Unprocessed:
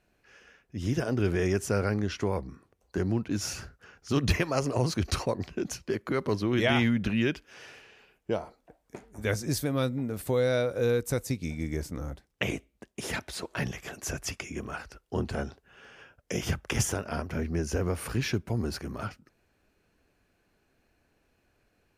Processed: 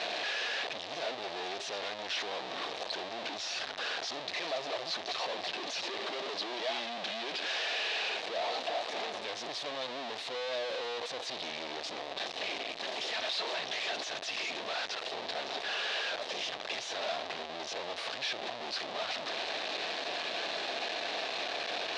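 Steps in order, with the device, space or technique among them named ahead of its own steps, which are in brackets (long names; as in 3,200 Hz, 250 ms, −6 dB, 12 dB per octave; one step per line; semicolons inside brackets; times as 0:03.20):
0:05.62–0:07.34: high-pass filter 180 Hz 6 dB per octave
home computer beeper (sign of each sample alone; loudspeaker in its box 650–4,700 Hz, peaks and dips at 670 Hz +6 dB, 1,000 Hz −3 dB, 1,400 Hz −8 dB, 2,100 Hz −3 dB, 3,800 Hz +6 dB)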